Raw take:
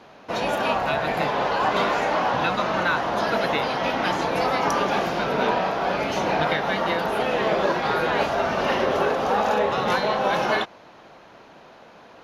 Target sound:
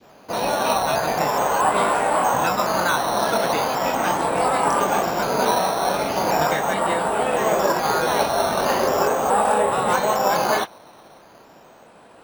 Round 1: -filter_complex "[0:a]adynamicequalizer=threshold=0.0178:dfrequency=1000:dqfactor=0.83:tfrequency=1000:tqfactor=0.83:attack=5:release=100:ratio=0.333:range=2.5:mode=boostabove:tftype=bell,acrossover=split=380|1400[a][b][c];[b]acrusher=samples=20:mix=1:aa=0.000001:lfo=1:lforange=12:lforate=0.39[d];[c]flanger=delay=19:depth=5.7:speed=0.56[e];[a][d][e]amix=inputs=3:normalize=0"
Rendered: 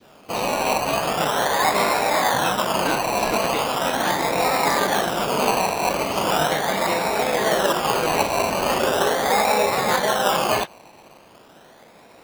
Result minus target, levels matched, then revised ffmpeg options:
decimation with a swept rate: distortion +14 dB
-filter_complex "[0:a]adynamicequalizer=threshold=0.0178:dfrequency=1000:dqfactor=0.83:tfrequency=1000:tqfactor=0.83:attack=5:release=100:ratio=0.333:range=2.5:mode=boostabove:tftype=bell,acrossover=split=380|1400[a][b][c];[b]acrusher=samples=7:mix=1:aa=0.000001:lfo=1:lforange=4.2:lforate=0.39[d];[c]flanger=delay=19:depth=5.7:speed=0.56[e];[a][d][e]amix=inputs=3:normalize=0"

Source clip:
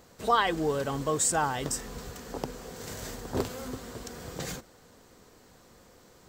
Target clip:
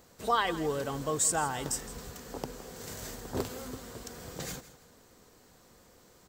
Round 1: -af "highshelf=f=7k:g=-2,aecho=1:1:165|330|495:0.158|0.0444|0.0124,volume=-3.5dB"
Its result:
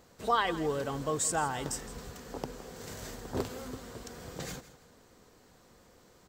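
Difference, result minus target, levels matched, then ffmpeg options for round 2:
8000 Hz band -2.5 dB
-af "highshelf=f=7k:g=5,aecho=1:1:165|330|495:0.158|0.0444|0.0124,volume=-3.5dB"

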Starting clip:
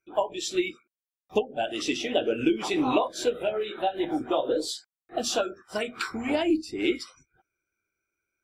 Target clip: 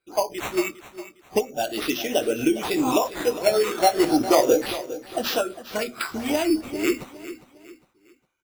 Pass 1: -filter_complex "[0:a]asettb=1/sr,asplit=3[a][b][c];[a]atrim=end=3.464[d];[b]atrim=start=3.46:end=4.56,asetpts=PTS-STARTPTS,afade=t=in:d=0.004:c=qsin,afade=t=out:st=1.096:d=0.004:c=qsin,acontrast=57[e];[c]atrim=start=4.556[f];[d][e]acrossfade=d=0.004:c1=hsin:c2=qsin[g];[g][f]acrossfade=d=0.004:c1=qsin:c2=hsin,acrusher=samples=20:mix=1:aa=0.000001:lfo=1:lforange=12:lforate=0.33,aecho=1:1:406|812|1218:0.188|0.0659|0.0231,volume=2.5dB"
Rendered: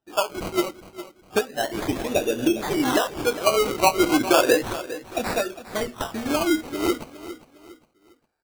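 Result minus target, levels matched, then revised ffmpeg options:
decimation with a swept rate: distortion +9 dB
-filter_complex "[0:a]asettb=1/sr,asplit=3[a][b][c];[a]atrim=end=3.464[d];[b]atrim=start=3.46:end=4.56,asetpts=PTS-STARTPTS,afade=t=in:d=0.004:c=qsin,afade=t=out:st=1.096:d=0.004:c=qsin,acontrast=57[e];[c]atrim=start=4.556[f];[d][e]acrossfade=d=0.004:c1=hsin:c2=qsin[g];[g][f]acrossfade=d=0.004:c1=qsin:c2=hsin,acrusher=samples=7:mix=1:aa=0.000001:lfo=1:lforange=4.2:lforate=0.33,aecho=1:1:406|812|1218:0.188|0.0659|0.0231,volume=2.5dB"

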